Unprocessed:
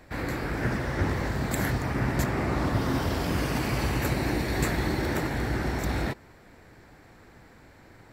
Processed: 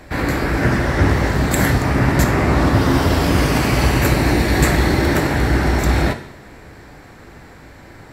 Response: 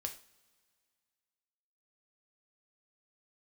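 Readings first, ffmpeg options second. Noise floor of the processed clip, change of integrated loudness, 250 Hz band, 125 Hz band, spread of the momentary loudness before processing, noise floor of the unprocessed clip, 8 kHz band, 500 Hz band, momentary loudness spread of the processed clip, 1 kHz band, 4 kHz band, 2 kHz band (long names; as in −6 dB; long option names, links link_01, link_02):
−41 dBFS, +11.5 dB, +11.5 dB, +12.0 dB, 3 LU, −53 dBFS, +12.0 dB, +11.5 dB, 3 LU, +11.5 dB, +11.5 dB, +11.5 dB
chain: -filter_complex "[0:a]asplit=2[link_01][link_02];[1:a]atrim=start_sample=2205,asetrate=26460,aresample=44100[link_03];[link_02][link_03]afir=irnorm=-1:irlink=0,volume=1dB[link_04];[link_01][link_04]amix=inputs=2:normalize=0,volume=4.5dB"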